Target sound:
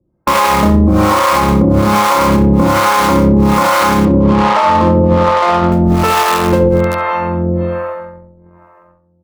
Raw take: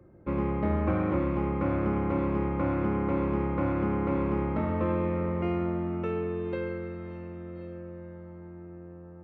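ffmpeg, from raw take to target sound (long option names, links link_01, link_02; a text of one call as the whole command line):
ffmpeg -i in.wav -filter_complex "[0:a]agate=range=-36dB:threshold=-40dB:ratio=16:detection=peak,equalizer=frequency=100:width_type=o:width=0.67:gain=-7,equalizer=frequency=400:width_type=o:width=0.67:gain=-6,equalizer=frequency=1000:width_type=o:width=0.67:gain=9,asplit=2[link_01][link_02];[link_02]aeval=exprs='(mod(35.5*val(0)+1,2)-1)/35.5':channel_layout=same,volume=-8dB[link_03];[link_01][link_03]amix=inputs=2:normalize=0,asettb=1/sr,asplit=3[link_04][link_05][link_06];[link_04]atrim=end=4.054[link_07];[link_05]atrim=start=4.05:end=5.72,asetpts=PTS-STARTPTS,afade=type=in:duration=0.004:curve=qsin,afade=type=out:start_time=1.666:duration=0.004:curve=qsin,adynamicsmooth=sensitivity=3.5:basefreq=560[link_08];[link_06]atrim=start=5.716[link_09];[link_07][link_08]acrossfade=duration=0.004:curve1=hsin:curve2=qsin[link_10];[link_10][link_09]acrossfade=duration=0.004:curve1=qsin:curve2=hsin,acrossover=split=520[link_11][link_12];[link_11]aeval=exprs='val(0)*(1-1/2+1/2*cos(2*PI*1.2*n/s))':channel_layout=same[link_13];[link_12]aeval=exprs='val(0)*(1-1/2-1/2*cos(2*PI*1.2*n/s))':channel_layout=same[link_14];[link_13][link_14]amix=inputs=2:normalize=0,asplit=2[link_15][link_16];[link_16]adelay=67,lowpass=frequency=1600:poles=1,volume=-6dB,asplit=2[link_17][link_18];[link_18]adelay=67,lowpass=frequency=1600:poles=1,volume=0.33,asplit=2[link_19][link_20];[link_20]adelay=67,lowpass=frequency=1600:poles=1,volume=0.33,asplit=2[link_21][link_22];[link_22]adelay=67,lowpass=frequency=1600:poles=1,volume=0.33[link_23];[link_15][link_17][link_19][link_21][link_23]amix=inputs=5:normalize=0,alimiter=level_in=30.5dB:limit=-1dB:release=50:level=0:latency=1,volume=-1.5dB" out.wav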